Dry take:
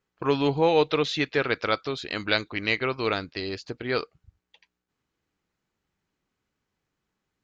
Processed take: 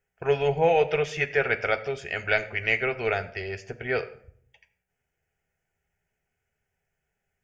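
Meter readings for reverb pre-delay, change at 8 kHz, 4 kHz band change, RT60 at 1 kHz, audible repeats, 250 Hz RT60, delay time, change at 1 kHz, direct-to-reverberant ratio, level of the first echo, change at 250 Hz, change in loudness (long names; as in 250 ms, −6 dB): 3 ms, can't be measured, −8.0 dB, 0.55 s, no echo audible, 0.85 s, no echo audible, −0.5 dB, 5.5 dB, no echo audible, −9.0 dB, 0.0 dB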